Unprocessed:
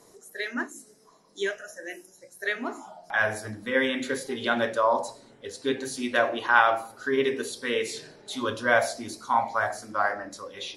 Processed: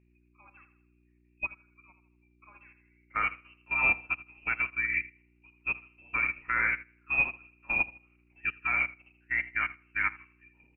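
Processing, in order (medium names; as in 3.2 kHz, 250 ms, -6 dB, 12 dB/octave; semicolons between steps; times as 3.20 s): peaking EQ 530 Hz +9.5 dB 0.48 oct; hum notches 60/120/180/240/300/360/420 Hz; level held to a coarse grid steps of 12 dB; frequency inversion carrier 2.9 kHz; mains buzz 60 Hz, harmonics 6, -43 dBFS -4 dB/octave; feedback delay 80 ms, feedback 42%, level -9 dB; upward expansion 2.5:1, over -37 dBFS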